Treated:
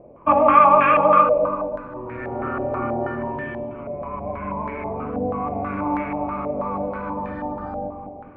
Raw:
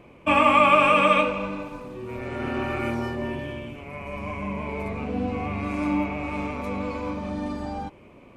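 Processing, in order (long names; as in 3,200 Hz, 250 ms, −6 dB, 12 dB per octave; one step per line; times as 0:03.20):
delay with a low-pass on its return 211 ms, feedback 49%, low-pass 710 Hz, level −5 dB
low-pass on a step sequencer 6.2 Hz 620–1,700 Hz
level −1 dB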